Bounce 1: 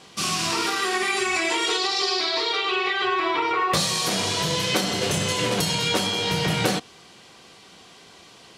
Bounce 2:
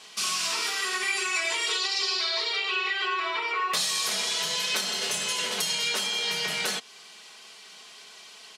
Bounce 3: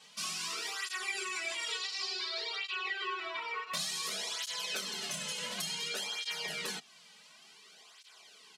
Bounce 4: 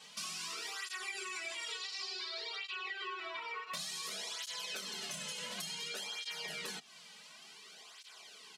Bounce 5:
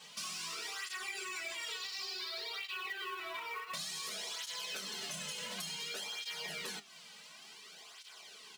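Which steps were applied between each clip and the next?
high-pass filter 1,500 Hz 6 dB per octave; comb filter 4.7 ms, depth 57%; in parallel at +2 dB: downward compressor, threshold −35 dBFS, peak gain reduction 13.5 dB; on the sum: level −5 dB
parametric band 160 Hz +6.5 dB 0.42 octaves; through-zero flanger with one copy inverted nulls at 0.56 Hz, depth 3 ms; level −6.5 dB
downward compressor 2.5 to 1, threshold −45 dBFS, peak gain reduction 9 dB; level +2.5 dB
in parallel at −7.5 dB: soft clipping −40 dBFS, distortion −13 dB; on the sum: flanger 0.77 Hz, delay 5.4 ms, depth 9 ms, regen +75%; floating-point word with a short mantissa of 2 bits; level +2.5 dB

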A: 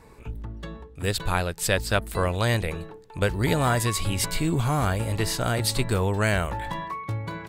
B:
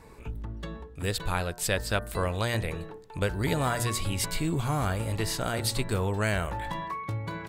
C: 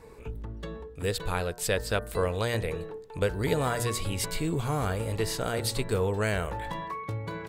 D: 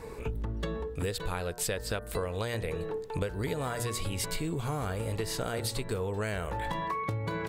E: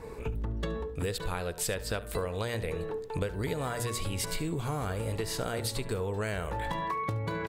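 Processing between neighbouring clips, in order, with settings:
hum removal 119.5 Hz, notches 16; in parallel at 0 dB: downward compressor, threshold −33 dBFS, peak gain reduction 14.5 dB; on the sum: level −6 dB
parametric band 460 Hz +8.5 dB 0.33 octaves; level −1.5 dB
downward compressor 12 to 1, threshold −36 dBFS, peak gain reduction 15.5 dB; level +7 dB
single-tap delay 72 ms −17.5 dB; one half of a high-frequency compander decoder only

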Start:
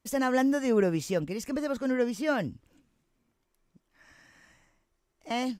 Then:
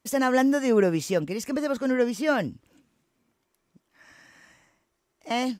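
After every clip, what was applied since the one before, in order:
high-pass filter 140 Hz 6 dB per octave
level +4.5 dB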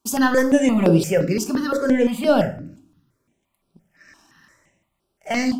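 leveller curve on the samples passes 1
rectangular room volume 540 cubic metres, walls furnished, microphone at 1.2 metres
step-sequenced phaser 5.8 Hz 530–6,700 Hz
level +4.5 dB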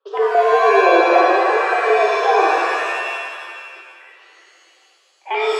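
treble cut that deepens with the level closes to 700 Hz, closed at −13.5 dBFS
single-sideband voice off tune +180 Hz 160–3,400 Hz
reverb with rising layers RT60 1.9 s, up +7 semitones, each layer −2 dB, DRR −0.5 dB

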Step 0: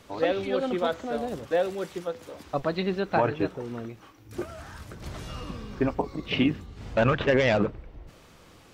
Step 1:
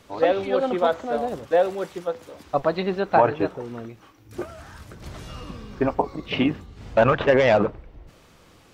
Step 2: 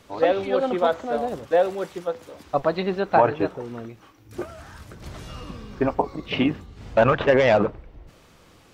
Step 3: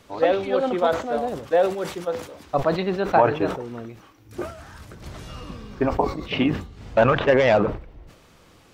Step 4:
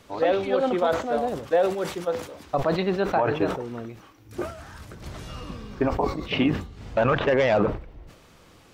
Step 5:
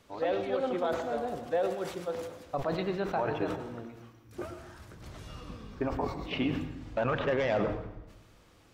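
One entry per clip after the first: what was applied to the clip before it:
dynamic equaliser 790 Hz, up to +8 dB, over −38 dBFS, Q 0.73
no processing that can be heard
level that may fall only so fast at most 110 dB per second
brickwall limiter −12.5 dBFS, peak gain reduction 8 dB
convolution reverb RT60 0.90 s, pre-delay 94 ms, DRR 8.5 dB; level −8.5 dB

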